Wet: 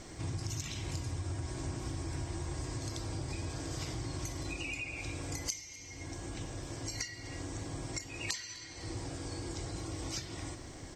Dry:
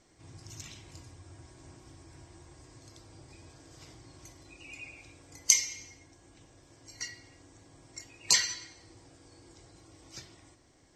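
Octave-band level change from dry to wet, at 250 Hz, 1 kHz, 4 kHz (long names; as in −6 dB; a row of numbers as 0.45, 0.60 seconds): +12.5, +5.0, −7.0 decibels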